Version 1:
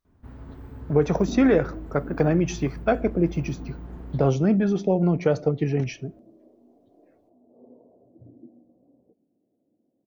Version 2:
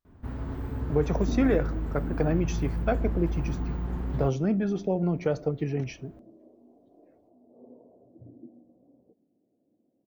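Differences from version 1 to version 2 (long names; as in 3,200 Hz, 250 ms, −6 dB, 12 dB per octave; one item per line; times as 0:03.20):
speech −5.5 dB
first sound +7.5 dB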